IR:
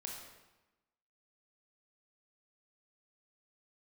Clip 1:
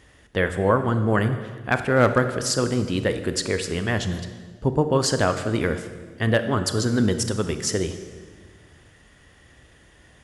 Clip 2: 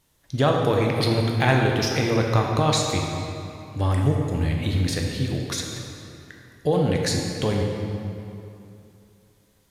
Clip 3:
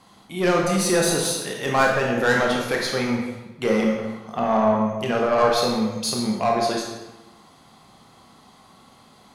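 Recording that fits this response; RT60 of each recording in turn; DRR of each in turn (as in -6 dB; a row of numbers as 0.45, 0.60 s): 3; 1.5, 2.8, 1.0 s; 8.5, 0.0, -1.0 dB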